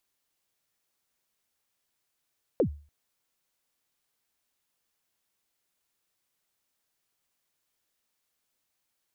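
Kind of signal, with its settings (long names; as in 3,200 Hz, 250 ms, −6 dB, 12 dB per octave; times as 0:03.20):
synth kick length 0.29 s, from 580 Hz, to 73 Hz, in 90 ms, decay 0.38 s, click off, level −17 dB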